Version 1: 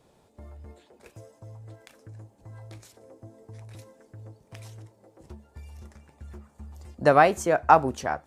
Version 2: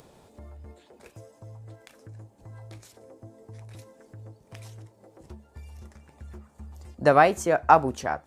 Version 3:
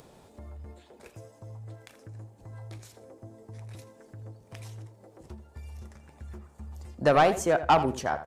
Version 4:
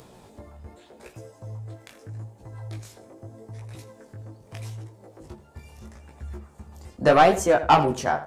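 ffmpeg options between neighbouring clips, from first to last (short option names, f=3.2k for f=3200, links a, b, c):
-af "acompressor=mode=upward:threshold=-46dB:ratio=2.5"
-filter_complex "[0:a]asoftclip=type=tanh:threshold=-13.5dB,asplit=2[a][b];[b]adelay=82,lowpass=f=3.8k:p=1,volume=-12.5dB,asplit=2[c][d];[d]adelay=82,lowpass=f=3.8k:p=1,volume=0.23,asplit=2[e][f];[f]adelay=82,lowpass=f=3.8k:p=1,volume=0.23[g];[a][c][e][g]amix=inputs=4:normalize=0"
-af "flanger=delay=15.5:depth=6.2:speed=0.81,volume=7.5dB"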